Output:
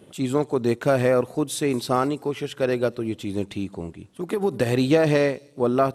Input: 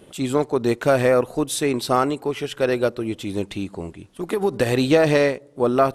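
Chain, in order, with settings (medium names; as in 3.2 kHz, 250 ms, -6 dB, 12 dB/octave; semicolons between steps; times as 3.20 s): high-pass 87 Hz; bass shelf 280 Hz +6 dB; feedback echo behind a high-pass 213 ms, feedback 31%, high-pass 5.3 kHz, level -17.5 dB; trim -4 dB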